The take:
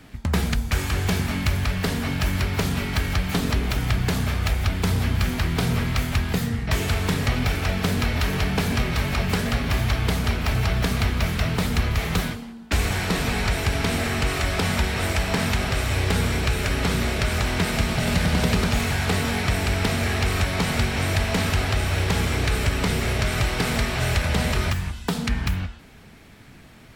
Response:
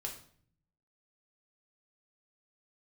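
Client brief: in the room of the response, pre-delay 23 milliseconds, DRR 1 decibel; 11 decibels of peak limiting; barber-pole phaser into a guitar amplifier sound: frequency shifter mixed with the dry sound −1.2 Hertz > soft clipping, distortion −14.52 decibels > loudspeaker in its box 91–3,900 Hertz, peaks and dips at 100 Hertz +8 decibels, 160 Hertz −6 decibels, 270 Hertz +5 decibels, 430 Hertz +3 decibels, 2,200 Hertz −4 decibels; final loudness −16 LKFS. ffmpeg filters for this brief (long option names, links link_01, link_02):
-filter_complex "[0:a]alimiter=limit=-19.5dB:level=0:latency=1,asplit=2[link_01][link_02];[1:a]atrim=start_sample=2205,adelay=23[link_03];[link_02][link_03]afir=irnorm=-1:irlink=0,volume=0dB[link_04];[link_01][link_04]amix=inputs=2:normalize=0,asplit=2[link_05][link_06];[link_06]afreqshift=-1.2[link_07];[link_05][link_07]amix=inputs=2:normalize=1,asoftclip=threshold=-24.5dB,highpass=91,equalizer=frequency=100:width_type=q:width=4:gain=8,equalizer=frequency=160:width_type=q:width=4:gain=-6,equalizer=frequency=270:width_type=q:width=4:gain=5,equalizer=frequency=430:width_type=q:width=4:gain=3,equalizer=frequency=2200:width_type=q:width=4:gain=-4,lowpass=frequency=3900:width=0.5412,lowpass=frequency=3900:width=1.3066,volume=16dB"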